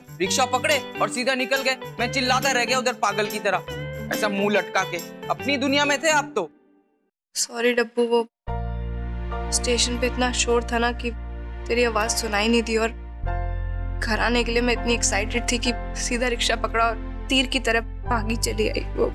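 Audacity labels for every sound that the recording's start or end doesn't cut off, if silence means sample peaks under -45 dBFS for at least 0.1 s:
7.350000	8.260000	sound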